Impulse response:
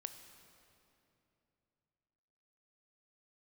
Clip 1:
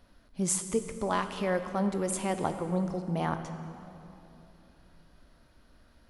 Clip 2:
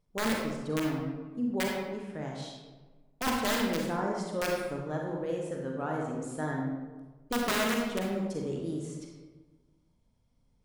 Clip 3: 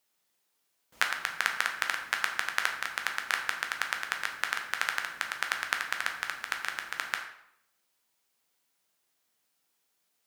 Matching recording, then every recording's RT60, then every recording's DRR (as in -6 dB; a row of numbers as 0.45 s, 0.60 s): 1; 2.9 s, 1.3 s, 0.75 s; 8.0 dB, -1.0 dB, 2.5 dB